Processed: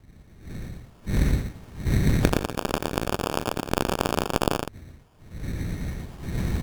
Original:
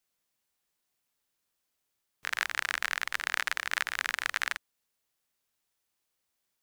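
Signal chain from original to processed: wind noise 140 Hz -47 dBFS; recorder AGC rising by 12 dB/s; bell 10000 Hz +15 dB 1.2 oct; in parallel at -8 dB: crossover distortion -20.5 dBFS; on the sum: sample-and-hold 22×; tube stage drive 11 dB, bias 0.6; on a send: tapped delay 89/116 ms -15/-4 dB; on the sum: gain +5 dB

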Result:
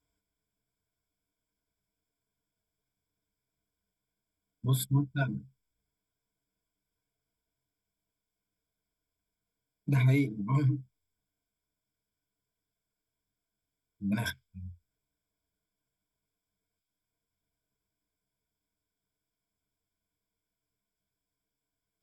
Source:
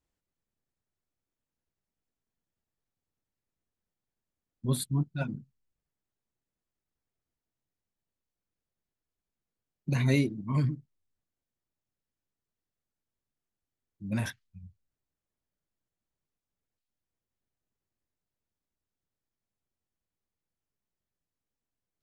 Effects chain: compressor, threshold -27 dBFS, peak gain reduction 7.5 dB; ripple EQ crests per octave 1.7, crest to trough 16 dB

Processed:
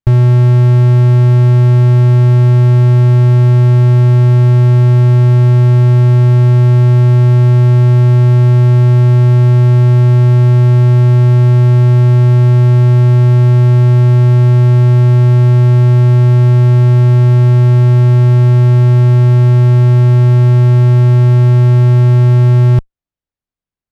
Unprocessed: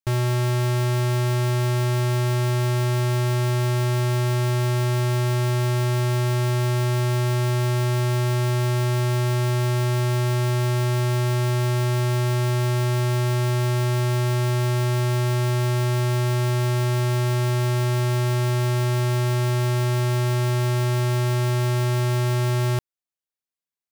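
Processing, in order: RIAA curve playback; added harmonics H 4 -32 dB, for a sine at -3.5 dBFS; gain +4 dB

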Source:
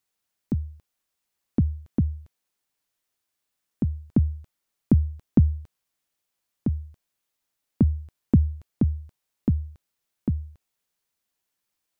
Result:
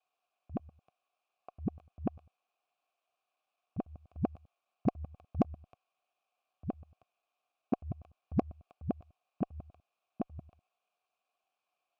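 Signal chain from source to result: local time reversal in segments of 99 ms; vowel filter a; added harmonics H 6 -32 dB, 8 -31 dB, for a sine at -28.5 dBFS; gain +13.5 dB

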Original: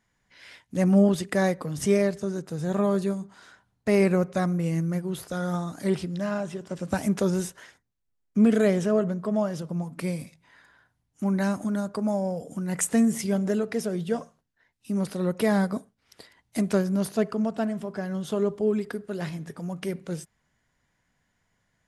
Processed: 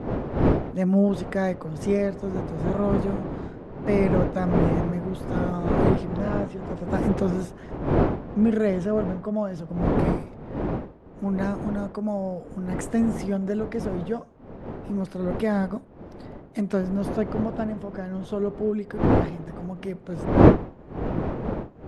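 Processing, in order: wind noise 420 Hz -26 dBFS; LPF 2000 Hz 6 dB/oct; gain -1 dB

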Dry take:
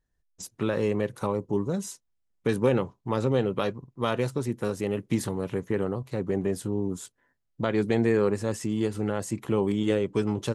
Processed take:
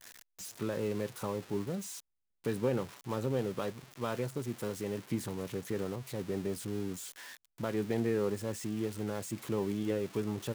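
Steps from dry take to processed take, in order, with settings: switching spikes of -19 dBFS; LPF 2000 Hz 6 dB/oct; gain -8 dB

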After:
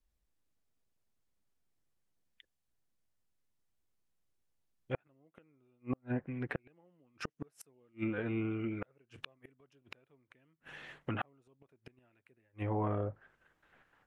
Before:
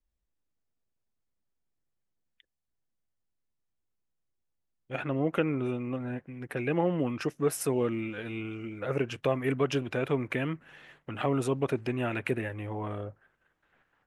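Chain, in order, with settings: flipped gate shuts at -24 dBFS, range -41 dB; treble ducked by the level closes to 1600 Hz, closed at -33.5 dBFS; gain +2 dB

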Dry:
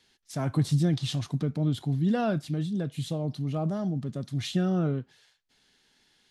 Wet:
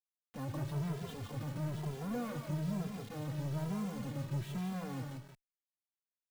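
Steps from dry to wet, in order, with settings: in parallel at +3 dB: compressor 5:1, threshold -41 dBFS, peak gain reduction 19 dB; on the sum: LPF 1700 Hz 12 dB/oct; low-pass opened by the level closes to 640 Hz, open at -22 dBFS; tilt shelf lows +7 dB, about 800 Hz; overloaded stage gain 24 dB; low shelf 120 Hz -5.5 dB; limiter -32 dBFS, peak gain reduction 10.5 dB; on a send: feedback echo 0.15 s, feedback 21%, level -13 dB; on the sum: bit-crush 8-bit; echo 0.177 s -6 dB; endless flanger 2.6 ms +1.1 Hz

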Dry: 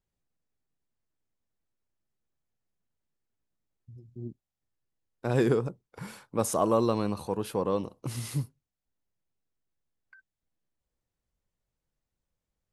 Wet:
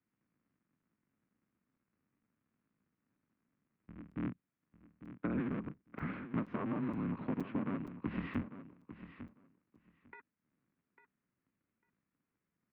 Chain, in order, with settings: cycle switcher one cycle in 3, inverted; band shelf 670 Hz -9.5 dB 1.3 oct; mistuned SSB -100 Hz 290–2600 Hz; compressor 20:1, threshold -43 dBFS, peak gain reduction 19.5 dB; low shelf 470 Hz +10.5 dB; feedback echo 0.849 s, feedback 15%, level -12.5 dB; crackling interface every 0.47 s, samples 256, zero, from 0.35; gain +3 dB

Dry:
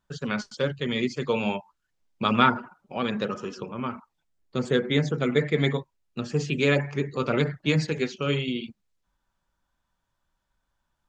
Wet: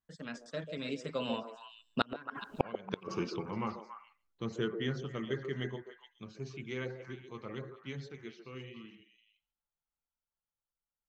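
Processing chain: Doppler pass-by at 2.61, 37 m/s, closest 2.3 m; flipped gate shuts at -29 dBFS, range -33 dB; delay with a stepping band-pass 0.14 s, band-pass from 470 Hz, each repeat 1.4 oct, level -5 dB; gain +18 dB

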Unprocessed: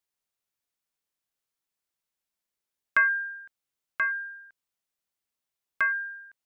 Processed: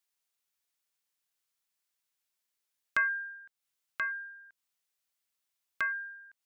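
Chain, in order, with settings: mismatched tape noise reduction encoder only; gain -6.5 dB

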